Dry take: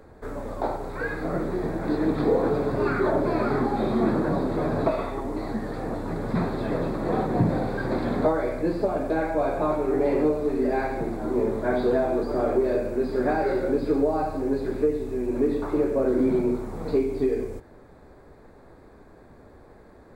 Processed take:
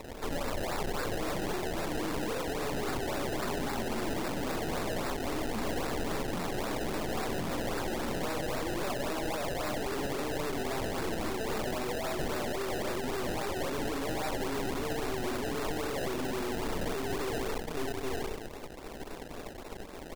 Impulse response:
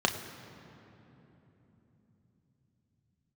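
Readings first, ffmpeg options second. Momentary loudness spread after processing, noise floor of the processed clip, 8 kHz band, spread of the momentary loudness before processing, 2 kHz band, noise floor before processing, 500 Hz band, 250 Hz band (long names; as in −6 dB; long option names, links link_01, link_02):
3 LU, −43 dBFS, can't be measured, 7 LU, −1.5 dB, −50 dBFS, −10.5 dB, −10.5 dB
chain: -filter_complex "[0:a]equalizer=frequency=110:width_type=o:width=1.7:gain=-10,acrossover=split=270|2100[link_01][link_02][link_03];[link_02]asoftclip=type=hard:threshold=-29.5dB[link_04];[link_01][link_04][link_03]amix=inputs=3:normalize=0,aecho=1:1:816:0.224,aresample=8000,asoftclip=type=tanh:threshold=-30.5dB,aresample=44100,acrusher=samples=27:mix=1:aa=0.000001:lfo=1:lforange=27:lforate=3.7,aeval=exprs='0.0355*(cos(1*acos(clip(val(0)/0.0355,-1,1)))-cos(1*PI/2))+0.01*(cos(5*acos(clip(val(0)/0.0355,-1,1)))-cos(5*PI/2))+0.0126*(cos(8*acos(clip(val(0)/0.0355,-1,1)))-cos(8*PI/2))':channel_layout=same"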